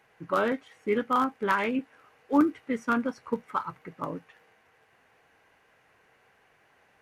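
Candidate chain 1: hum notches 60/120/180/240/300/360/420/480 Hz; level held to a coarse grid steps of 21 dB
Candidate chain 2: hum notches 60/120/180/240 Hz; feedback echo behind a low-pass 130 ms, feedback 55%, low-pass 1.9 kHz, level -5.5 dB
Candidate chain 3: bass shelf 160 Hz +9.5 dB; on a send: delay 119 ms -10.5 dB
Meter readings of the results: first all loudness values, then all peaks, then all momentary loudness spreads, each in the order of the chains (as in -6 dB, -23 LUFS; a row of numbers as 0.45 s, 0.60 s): -39.0 LUFS, -28.0 LUFS, -27.0 LUFS; -13.5 dBFS, -11.5 dBFS, -10.0 dBFS; 18 LU, 11 LU, 13 LU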